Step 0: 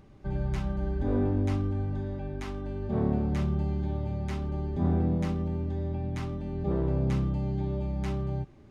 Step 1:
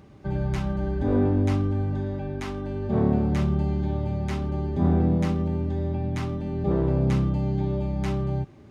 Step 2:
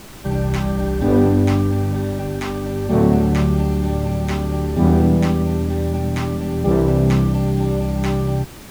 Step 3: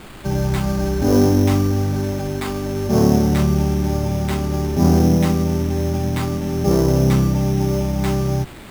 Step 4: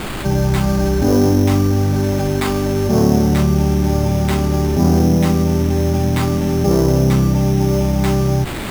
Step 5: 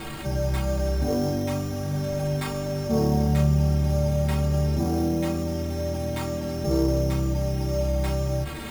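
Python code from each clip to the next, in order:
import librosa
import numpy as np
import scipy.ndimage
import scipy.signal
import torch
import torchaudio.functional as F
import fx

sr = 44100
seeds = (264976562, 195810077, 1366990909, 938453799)

y1 = scipy.signal.sosfilt(scipy.signal.butter(2, 67.0, 'highpass', fs=sr, output='sos'), x)
y1 = F.gain(torch.from_numpy(y1), 5.5).numpy()
y2 = fx.low_shelf(y1, sr, hz=95.0, db=-5.5)
y2 = fx.dmg_noise_colour(y2, sr, seeds[0], colour='pink', level_db=-48.0)
y2 = F.gain(torch.from_numpy(y2), 8.5).numpy()
y3 = fx.sample_hold(y2, sr, seeds[1], rate_hz=5800.0, jitter_pct=0)
y4 = fx.env_flatten(y3, sr, amount_pct=50)
y5 = fx.stiff_resonator(y4, sr, f0_hz=68.0, decay_s=0.29, stiffness=0.03)
y5 = F.gain(torch.from_numpy(y5), -2.0).numpy()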